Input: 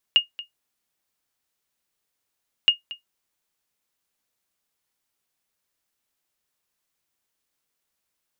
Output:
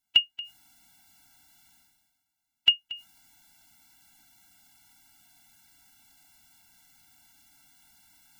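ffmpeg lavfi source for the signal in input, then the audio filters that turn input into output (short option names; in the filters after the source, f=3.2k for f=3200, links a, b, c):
-f lavfi -i "aevalsrc='0.447*(sin(2*PI*2850*mod(t,2.52))*exp(-6.91*mod(t,2.52)/0.13)+0.119*sin(2*PI*2850*max(mod(t,2.52)-0.23,0))*exp(-6.91*max(mod(t,2.52)-0.23,0)/0.13))':d=5.04:s=44100"
-af "areverse,acompressor=mode=upward:threshold=-38dB:ratio=2.5,areverse,afftfilt=real='re*eq(mod(floor(b*sr/1024/330),2),0)':imag='im*eq(mod(floor(b*sr/1024/330),2),0)':win_size=1024:overlap=0.75"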